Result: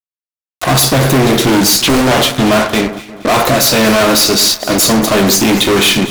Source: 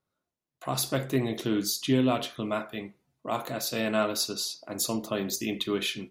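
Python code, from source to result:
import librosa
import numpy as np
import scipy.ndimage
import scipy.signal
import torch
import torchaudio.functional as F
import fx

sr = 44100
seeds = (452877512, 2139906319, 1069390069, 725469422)

y = fx.fuzz(x, sr, gain_db=43.0, gate_db=-45.0)
y = fx.echo_alternate(y, sr, ms=118, hz=1900.0, feedback_pct=65, wet_db=-11.5)
y = fx.doppler_dist(y, sr, depth_ms=0.86, at=(1.79, 2.22))
y = y * librosa.db_to_amplitude(5.0)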